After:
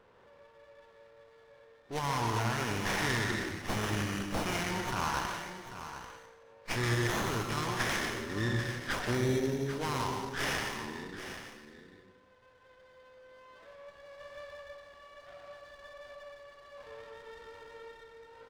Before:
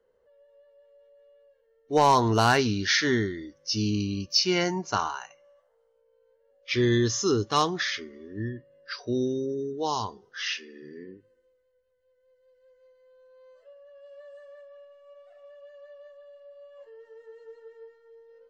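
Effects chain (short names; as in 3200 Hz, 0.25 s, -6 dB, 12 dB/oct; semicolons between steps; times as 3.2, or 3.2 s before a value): per-bin compression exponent 0.6; low-pass opened by the level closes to 1500 Hz, open at -21 dBFS; passive tone stack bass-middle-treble 5-5-5; notch 2700 Hz, Q 15; in parallel at -1 dB: vocal rider 0.5 s; on the sum: limiter -20 dBFS, peak gain reduction 9.5 dB; on a send: echo 0.792 s -11 dB; on the sum: plate-style reverb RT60 0.83 s, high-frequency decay 0.85×, pre-delay 0.105 s, DRR 3 dB; running maximum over 9 samples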